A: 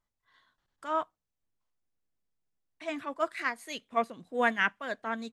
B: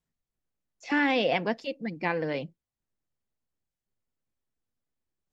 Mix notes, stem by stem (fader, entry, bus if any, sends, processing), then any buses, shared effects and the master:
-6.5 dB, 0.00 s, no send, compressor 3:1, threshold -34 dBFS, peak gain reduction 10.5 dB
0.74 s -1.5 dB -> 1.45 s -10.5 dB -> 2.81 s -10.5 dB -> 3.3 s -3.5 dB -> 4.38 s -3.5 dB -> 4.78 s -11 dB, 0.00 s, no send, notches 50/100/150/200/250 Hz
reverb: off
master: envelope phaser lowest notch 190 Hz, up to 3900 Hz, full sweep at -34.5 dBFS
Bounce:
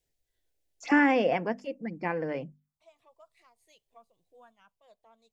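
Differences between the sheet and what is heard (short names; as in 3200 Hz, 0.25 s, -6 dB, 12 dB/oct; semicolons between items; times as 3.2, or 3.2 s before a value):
stem A -6.5 dB -> -18.5 dB; stem B -1.5 dB -> +7.5 dB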